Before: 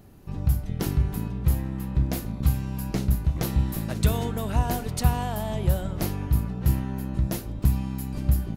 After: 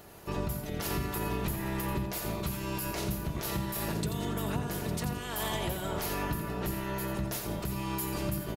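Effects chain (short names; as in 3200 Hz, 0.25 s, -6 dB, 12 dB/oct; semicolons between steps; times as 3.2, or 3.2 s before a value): spectral limiter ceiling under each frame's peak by 19 dB; 3.88–5.19 bell 150 Hz +13.5 dB 2.9 oct; compressor 5:1, threshold -27 dBFS, peak gain reduction 19 dB; limiter -22 dBFS, peak gain reduction 9 dB; notch comb 260 Hz; feedback echo 86 ms, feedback 34%, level -8.5 dB; 0.9–2.06 three-band squash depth 70%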